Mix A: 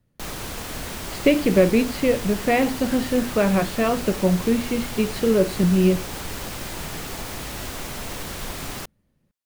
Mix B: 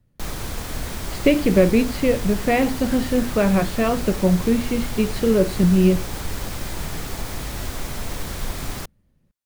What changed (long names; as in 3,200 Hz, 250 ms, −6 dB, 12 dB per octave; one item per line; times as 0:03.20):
background: add parametric band 2,800 Hz −3 dB 0.26 octaves
master: add low-shelf EQ 110 Hz +9 dB